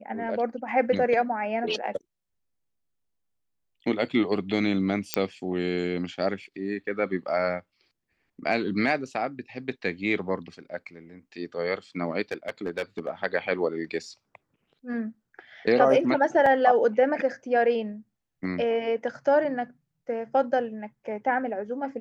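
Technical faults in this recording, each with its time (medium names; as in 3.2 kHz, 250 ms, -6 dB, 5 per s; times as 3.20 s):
5.14 s: pop -6 dBFS
12.31–13.09 s: clipped -23 dBFS
16.46 s: dropout 3.5 ms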